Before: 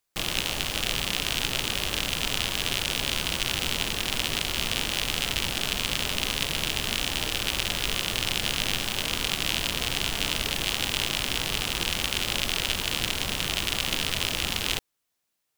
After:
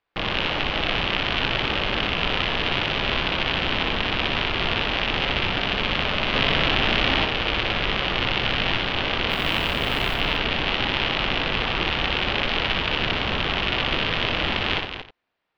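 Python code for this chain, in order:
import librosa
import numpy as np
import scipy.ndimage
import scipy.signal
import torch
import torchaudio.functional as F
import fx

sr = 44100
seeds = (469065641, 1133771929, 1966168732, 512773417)

y = scipy.ndimage.gaussian_filter1d(x, 2.9, mode='constant')
y = fx.low_shelf(y, sr, hz=320.0, db=-5.5)
y = fx.quant_companded(y, sr, bits=6, at=(9.29, 10.13), fade=0.02)
y = fx.echo_multitap(y, sr, ms=(61, 91, 228, 317), db=(-4.0, -11.5, -8.5, -20.0))
y = fx.env_flatten(y, sr, amount_pct=100, at=(6.33, 7.24), fade=0.02)
y = F.gain(torch.from_numpy(y), 8.5).numpy()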